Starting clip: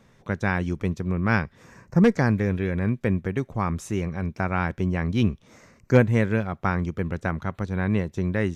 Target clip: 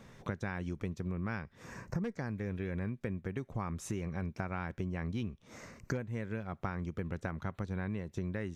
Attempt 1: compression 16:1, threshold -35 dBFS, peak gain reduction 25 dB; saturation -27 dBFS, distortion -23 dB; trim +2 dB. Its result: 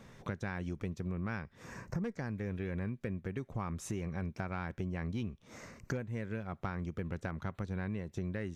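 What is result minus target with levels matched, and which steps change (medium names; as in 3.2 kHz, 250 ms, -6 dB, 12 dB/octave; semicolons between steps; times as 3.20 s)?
saturation: distortion +14 dB
change: saturation -19 dBFS, distortion -37 dB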